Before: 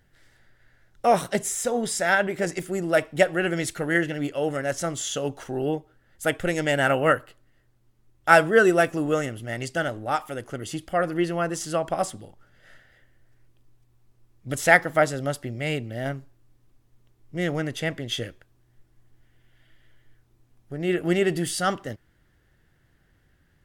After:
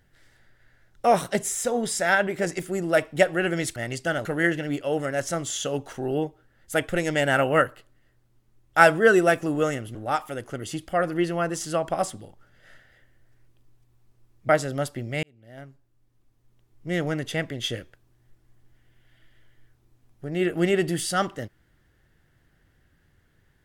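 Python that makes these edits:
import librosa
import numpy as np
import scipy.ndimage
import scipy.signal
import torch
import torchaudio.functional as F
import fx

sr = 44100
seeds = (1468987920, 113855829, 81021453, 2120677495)

y = fx.edit(x, sr, fx.move(start_s=9.46, length_s=0.49, to_s=3.76),
    fx.cut(start_s=14.49, length_s=0.48),
    fx.fade_in_span(start_s=15.71, length_s=1.71), tone=tone)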